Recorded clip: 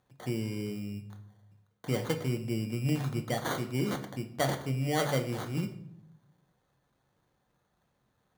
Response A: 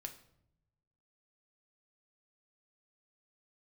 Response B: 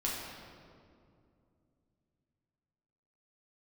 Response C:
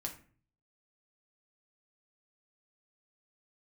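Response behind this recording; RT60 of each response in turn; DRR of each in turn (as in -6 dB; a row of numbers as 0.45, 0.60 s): A; 0.75, 2.4, 0.45 s; 4.5, -5.5, 1.0 dB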